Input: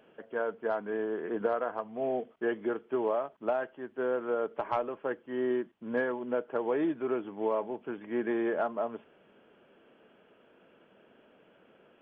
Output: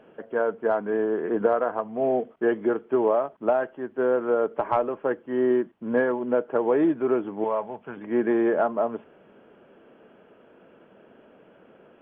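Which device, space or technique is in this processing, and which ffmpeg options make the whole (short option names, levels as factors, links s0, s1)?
through cloth: -filter_complex "[0:a]asettb=1/sr,asplit=3[s0][s1][s2];[s0]atrim=end=7.444[s3];[s1]atrim=start=7.44:end=7.97,asetpts=PTS-STARTPTS,afade=t=in:d=0.004:c=qsin,afade=t=out:st=0.526:d=0.004:c=qsin,equalizer=f=320:w=1.5:g=-14.5[s4];[s2]atrim=start=7.966[s5];[s3][s4]acrossfade=d=0.004:c1=hsin:c2=qsin[s6];[s6][s5]acrossfade=d=0.004:c1=qsin:c2=hsin,highshelf=f=3000:g=-15,volume=2.66"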